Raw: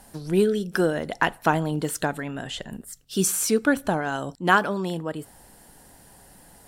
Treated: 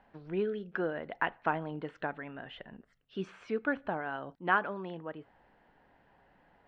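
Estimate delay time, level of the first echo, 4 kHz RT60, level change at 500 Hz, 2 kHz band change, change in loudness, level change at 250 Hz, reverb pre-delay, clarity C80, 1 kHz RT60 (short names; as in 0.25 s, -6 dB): none, none, none, -10.5 dB, -8.5 dB, -11.0 dB, -13.0 dB, none, none, none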